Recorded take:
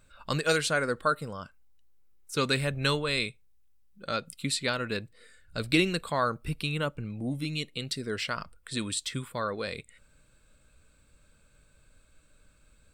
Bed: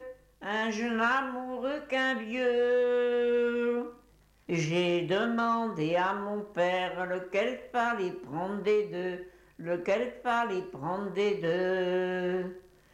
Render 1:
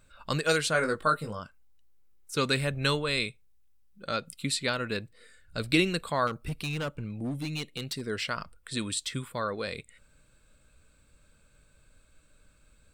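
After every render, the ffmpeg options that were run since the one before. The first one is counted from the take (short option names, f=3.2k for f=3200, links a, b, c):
-filter_complex "[0:a]asettb=1/sr,asplit=3[a][b][c];[a]atrim=end=0.724[d];[b]atrim=start=0.72:end=1.39,asetpts=PTS-STARTPTS,afade=t=in:d=0.004:c=qsin,afade=t=out:st=0.666:d=0.004:c=qsin,asplit=2[e][f];[f]adelay=19,volume=-4.5dB[g];[e][g]amix=inputs=2:normalize=0,atrim=end_sample=29547[h];[c]atrim=start=1.386[i];[d][h]acrossfade=d=0.004:c1=hsin:c2=qsin[j];[j][i]acrossfade=d=0.004:c1=qsin:c2=hsin,asettb=1/sr,asplit=3[k][l][m];[k]atrim=end=6.274[n];[l]atrim=start=6.27:end=8.05,asetpts=PTS-STARTPTS,afade=t=in:d=0.004:c=qsin,afade=t=out:st=1.776:d=0.004:c=qsin,asoftclip=type=hard:threshold=-28.5dB[o];[m]atrim=start=8.046[p];[n][o]acrossfade=d=0.004:c1=hsin:c2=qsin[q];[q][p]acrossfade=d=0.004:c1=qsin:c2=hsin"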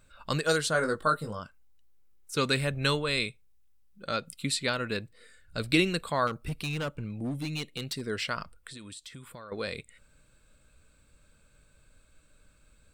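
-filter_complex "[0:a]asettb=1/sr,asplit=3[a][b][c];[a]atrim=end=0.454[d];[b]atrim=start=0.45:end=1.32,asetpts=PTS-STARTPTS,afade=t=in:d=0.004:c=qsin,afade=t=out:st=0.866:d=0.004:c=qsin,equalizer=f=2.4k:w=3.4:g=-10.5[e];[c]atrim=start=1.316[f];[d][e]acrossfade=d=0.004:c1=hsin:c2=qsin[g];[g][f]acrossfade=d=0.004:c1=qsin:c2=hsin,asettb=1/sr,asplit=3[h][i][j];[h]atrim=end=8.704[k];[i]atrim=start=8.7:end=9.52,asetpts=PTS-STARTPTS,afade=t=in:d=0.004:c=qsin,afade=t=out:st=0.816:d=0.004:c=qsin,acompressor=threshold=-43dB:ratio=5:attack=3.2:release=140:knee=1:detection=peak[l];[j]atrim=start=9.516[m];[k][l]acrossfade=d=0.004:c1=hsin:c2=qsin[n];[n][m]acrossfade=d=0.004:c1=qsin:c2=hsin"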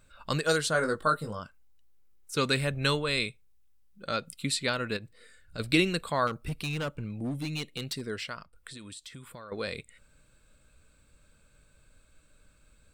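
-filter_complex "[0:a]asplit=3[a][b][c];[a]afade=t=out:st=4.96:d=0.02[d];[b]acompressor=threshold=-37dB:ratio=6:attack=3.2:release=140:knee=1:detection=peak,afade=t=in:st=4.96:d=0.02,afade=t=out:st=5.58:d=0.02[e];[c]afade=t=in:st=5.58:d=0.02[f];[d][e][f]amix=inputs=3:normalize=0,asplit=2[g][h];[g]atrim=end=8.53,asetpts=PTS-STARTPTS,afade=t=out:st=7.94:d=0.59:silence=0.188365[i];[h]atrim=start=8.53,asetpts=PTS-STARTPTS,afade=t=in:d=0.004:c=hsin:silence=0.188365[j];[i][j]concat=n=2:v=0:a=1"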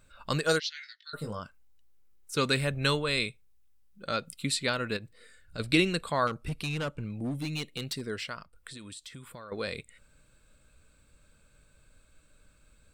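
-filter_complex "[0:a]asplit=3[a][b][c];[a]afade=t=out:st=0.58:d=0.02[d];[b]asuperpass=centerf=3400:order=12:qfactor=0.87,afade=t=in:st=0.58:d=0.02,afade=t=out:st=1.13:d=0.02[e];[c]afade=t=in:st=1.13:d=0.02[f];[d][e][f]amix=inputs=3:normalize=0,asettb=1/sr,asplit=3[g][h][i];[g]atrim=end=5.584[j];[h]atrim=start=5.58:end=6.98,asetpts=PTS-STARTPTS,afade=t=in:d=0.004:c=qsin,afade=t=out:st=1.396:d=0.004:c=qsin,lowpass=12k[k];[i]atrim=start=6.976[l];[j][k]acrossfade=d=0.004:c1=hsin:c2=qsin[m];[m][l]acrossfade=d=0.004:c1=qsin:c2=hsin"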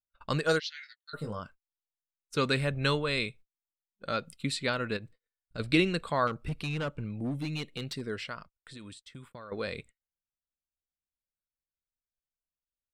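-af "lowpass=f=3.6k:p=1,agate=range=-42dB:threshold=-49dB:ratio=16:detection=peak"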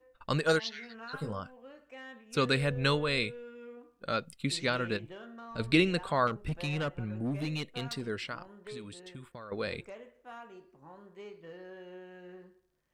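-filter_complex "[1:a]volume=-19dB[a];[0:a][a]amix=inputs=2:normalize=0"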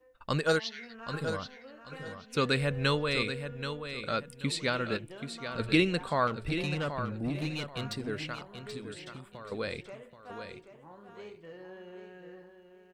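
-af "aecho=1:1:781|1562|2343:0.355|0.0887|0.0222"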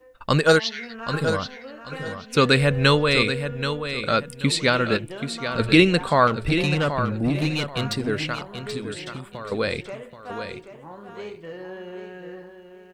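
-af "volume=10.5dB,alimiter=limit=-1dB:level=0:latency=1"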